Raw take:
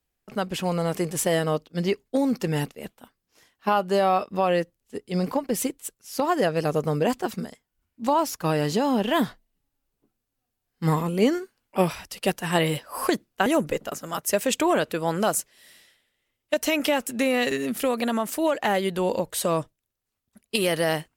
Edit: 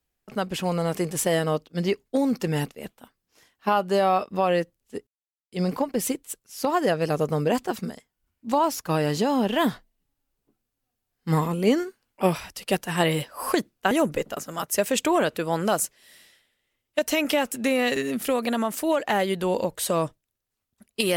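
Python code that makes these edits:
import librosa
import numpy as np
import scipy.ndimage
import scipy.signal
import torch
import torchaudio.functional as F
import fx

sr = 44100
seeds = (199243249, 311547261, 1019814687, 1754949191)

y = fx.edit(x, sr, fx.insert_silence(at_s=5.07, length_s=0.45), tone=tone)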